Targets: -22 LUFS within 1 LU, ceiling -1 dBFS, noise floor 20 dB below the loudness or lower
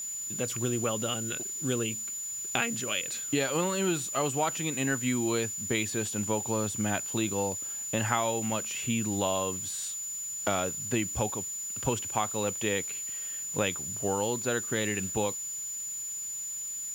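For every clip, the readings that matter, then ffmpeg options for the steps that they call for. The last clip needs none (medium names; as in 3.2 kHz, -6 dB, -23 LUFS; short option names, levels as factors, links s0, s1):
steady tone 7 kHz; tone level -34 dBFS; noise floor -37 dBFS; noise floor target -50 dBFS; loudness -30.0 LUFS; peak level -9.5 dBFS; loudness target -22.0 LUFS
-> -af "bandreject=f=7000:w=30"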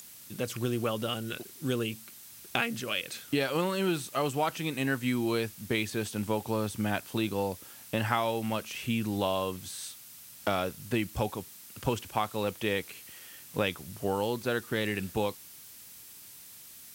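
steady tone not found; noise floor -50 dBFS; noise floor target -52 dBFS
-> -af "afftdn=nr=6:nf=-50"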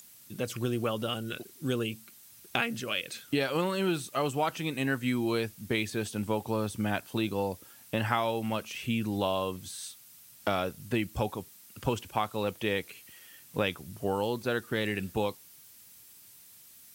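noise floor -54 dBFS; loudness -32.0 LUFS; peak level -9.5 dBFS; loudness target -22.0 LUFS
-> -af "volume=3.16,alimiter=limit=0.891:level=0:latency=1"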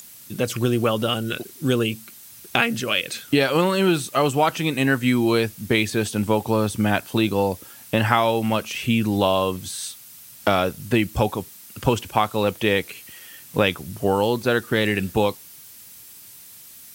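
loudness -22.0 LUFS; peak level -1.0 dBFS; noise floor -44 dBFS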